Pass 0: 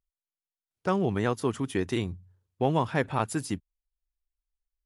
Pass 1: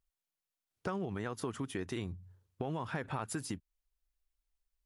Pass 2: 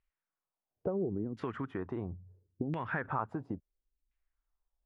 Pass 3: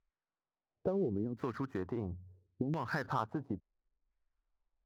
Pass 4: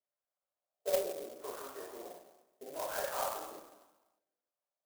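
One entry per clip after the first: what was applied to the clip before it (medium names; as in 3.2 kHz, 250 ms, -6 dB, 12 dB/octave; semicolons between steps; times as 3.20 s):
peak limiter -20.5 dBFS, peak gain reduction 8 dB; compression 4:1, threshold -39 dBFS, peak gain reduction 12.5 dB; dynamic bell 1.4 kHz, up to +4 dB, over -55 dBFS, Q 1.6; trim +2.5 dB
LFO low-pass saw down 0.73 Hz 240–2400 Hz
median filter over 15 samples
ladder high-pass 530 Hz, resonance 70%; reverberation RT60 1.1 s, pre-delay 3 ms, DRR -7 dB; sampling jitter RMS 0.086 ms; trim +1 dB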